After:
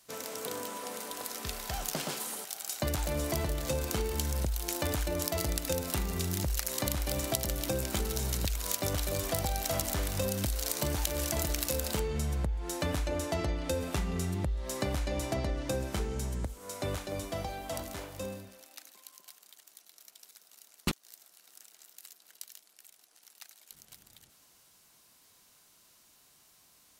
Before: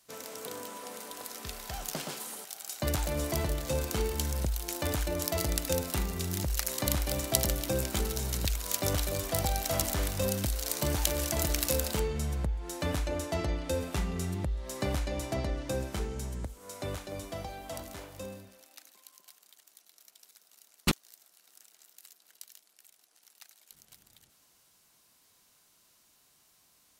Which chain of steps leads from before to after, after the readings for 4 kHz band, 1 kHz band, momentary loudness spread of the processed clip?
−1.0 dB, 0.0 dB, 19 LU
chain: downward compressor 5 to 1, threshold −31 dBFS, peak gain reduction 11 dB
level +3 dB

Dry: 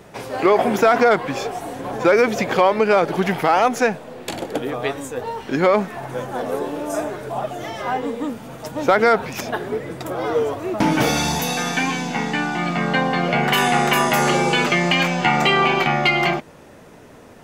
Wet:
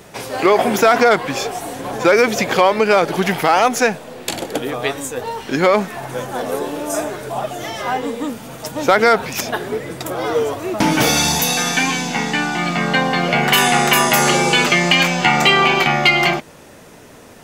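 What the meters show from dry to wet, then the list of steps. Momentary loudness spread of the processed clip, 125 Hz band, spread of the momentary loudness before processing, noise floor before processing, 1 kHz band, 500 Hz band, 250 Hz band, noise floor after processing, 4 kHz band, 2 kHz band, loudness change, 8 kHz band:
13 LU, +1.5 dB, 12 LU, −44 dBFS, +2.5 dB, +2.0 dB, +1.5 dB, −42 dBFS, +6.5 dB, +4.5 dB, +3.5 dB, +9.0 dB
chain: high-shelf EQ 2,800 Hz +8.5 dB
level +1.5 dB

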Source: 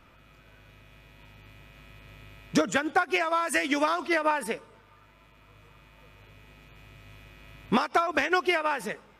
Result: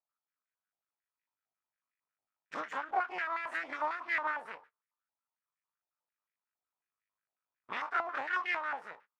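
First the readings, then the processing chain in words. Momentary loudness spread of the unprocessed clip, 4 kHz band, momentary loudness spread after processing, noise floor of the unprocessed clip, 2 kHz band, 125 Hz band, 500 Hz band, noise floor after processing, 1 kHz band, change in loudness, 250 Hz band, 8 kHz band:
5 LU, −15.5 dB, 10 LU, −57 dBFS, −6.5 dB, below −25 dB, −16.0 dB, below −85 dBFS, −7.5 dB, −9.0 dB, −24.0 dB, below −25 dB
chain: every bin's largest magnitude spread in time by 60 ms
noise gate −40 dBFS, range −30 dB
half-wave rectification
band-pass on a step sequencer 11 Hz 780–1,900 Hz
level −1.5 dB

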